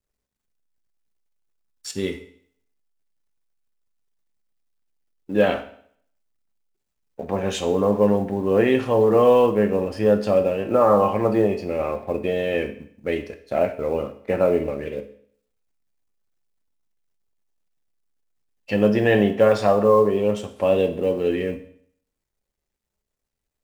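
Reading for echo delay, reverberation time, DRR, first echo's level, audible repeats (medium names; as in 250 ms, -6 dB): no echo, 0.60 s, 7.0 dB, no echo, no echo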